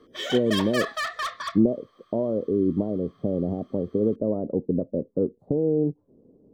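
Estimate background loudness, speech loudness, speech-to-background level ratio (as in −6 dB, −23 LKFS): −30.0 LKFS, −26.0 LKFS, 4.0 dB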